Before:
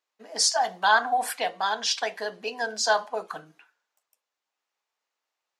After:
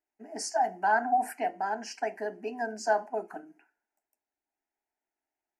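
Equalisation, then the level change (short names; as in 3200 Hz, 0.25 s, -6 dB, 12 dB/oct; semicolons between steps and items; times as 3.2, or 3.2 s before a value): Butterworth band-stop 3500 Hz, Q 3.4; tilt shelf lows +9.5 dB, about 680 Hz; fixed phaser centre 760 Hz, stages 8; 0.0 dB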